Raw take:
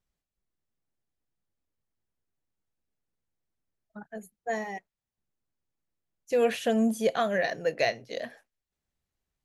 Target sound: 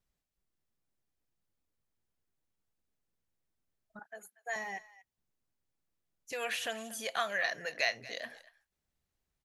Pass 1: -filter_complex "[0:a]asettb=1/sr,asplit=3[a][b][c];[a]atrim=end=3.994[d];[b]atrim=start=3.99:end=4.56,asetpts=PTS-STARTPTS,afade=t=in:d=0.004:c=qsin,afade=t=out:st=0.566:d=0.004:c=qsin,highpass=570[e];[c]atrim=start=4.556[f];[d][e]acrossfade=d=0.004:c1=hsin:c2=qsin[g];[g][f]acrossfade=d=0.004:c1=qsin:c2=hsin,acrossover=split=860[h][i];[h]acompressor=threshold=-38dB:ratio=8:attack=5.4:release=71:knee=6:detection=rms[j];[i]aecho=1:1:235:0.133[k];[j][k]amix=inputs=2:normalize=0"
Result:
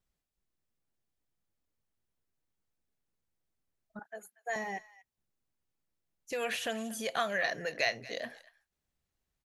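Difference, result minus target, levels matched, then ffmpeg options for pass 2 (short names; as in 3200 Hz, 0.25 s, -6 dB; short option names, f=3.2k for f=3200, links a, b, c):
compressor: peak gain reduction -9 dB
-filter_complex "[0:a]asettb=1/sr,asplit=3[a][b][c];[a]atrim=end=3.994[d];[b]atrim=start=3.99:end=4.56,asetpts=PTS-STARTPTS,afade=t=in:d=0.004:c=qsin,afade=t=out:st=0.566:d=0.004:c=qsin,highpass=570[e];[c]atrim=start=4.556[f];[d][e]acrossfade=d=0.004:c1=hsin:c2=qsin[g];[g][f]acrossfade=d=0.004:c1=qsin:c2=hsin,acrossover=split=860[h][i];[h]acompressor=threshold=-48.5dB:ratio=8:attack=5.4:release=71:knee=6:detection=rms[j];[i]aecho=1:1:235:0.133[k];[j][k]amix=inputs=2:normalize=0"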